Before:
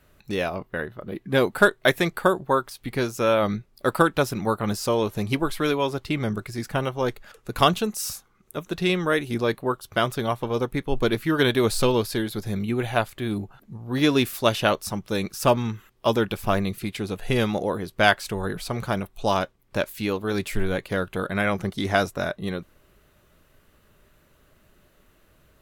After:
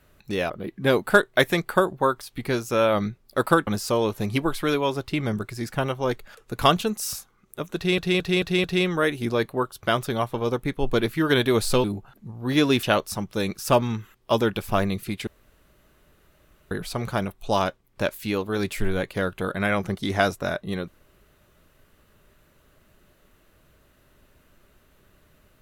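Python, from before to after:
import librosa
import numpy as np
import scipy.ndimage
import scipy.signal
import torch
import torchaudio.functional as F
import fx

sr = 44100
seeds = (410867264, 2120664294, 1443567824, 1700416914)

y = fx.edit(x, sr, fx.cut(start_s=0.5, length_s=0.48),
    fx.cut(start_s=4.15, length_s=0.49),
    fx.stutter(start_s=8.73, slice_s=0.22, count=5),
    fx.cut(start_s=11.93, length_s=1.37),
    fx.cut(start_s=14.29, length_s=0.29),
    fx.room_tone_fill(start_s=17.02, length_s=1.44), tone=tone)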